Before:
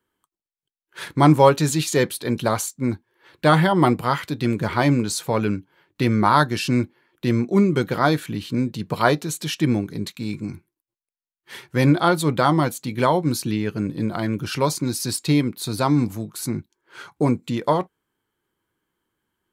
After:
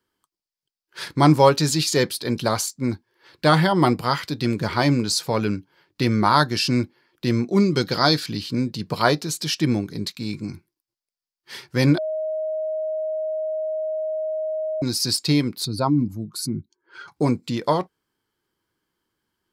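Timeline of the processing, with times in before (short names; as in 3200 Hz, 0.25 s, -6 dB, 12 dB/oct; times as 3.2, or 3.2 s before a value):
7.6–8.41 bell 4700 Hz +9.5 dB 0.73 oct
11.98–14.82 bleep 627 Hz -22 dBFS
15.65–17.08 spectral contrast raised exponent 1.6
whole clip: bell 4900 Hz +11.5 dB 0.47 oct; gain -1 dB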